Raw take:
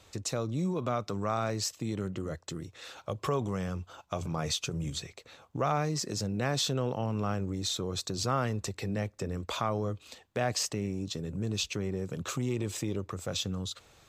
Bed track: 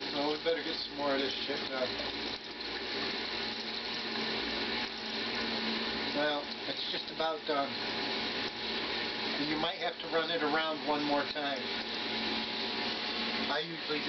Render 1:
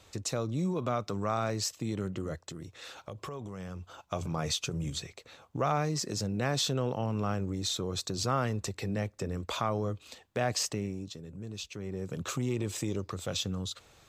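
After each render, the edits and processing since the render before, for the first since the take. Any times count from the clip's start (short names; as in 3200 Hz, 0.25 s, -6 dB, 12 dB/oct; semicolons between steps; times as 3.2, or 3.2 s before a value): 2.47–3.94 compressor, threshold -37 dBFS; 10.74–12.16 dip -8.5 dB, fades 0.43 s; 12.8–13.32 bell 8500 Hz -> 2900 Hz +12 dB 0.45 oct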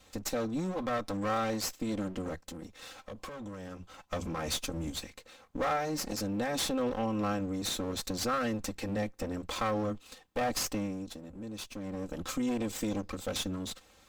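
minimum comb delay 3.8 ms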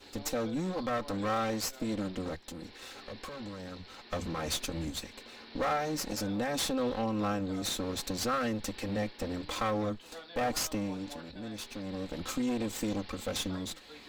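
add bed track -16.5 dB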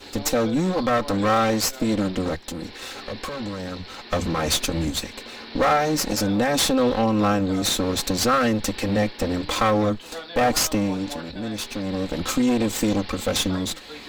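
gain +11.5 dB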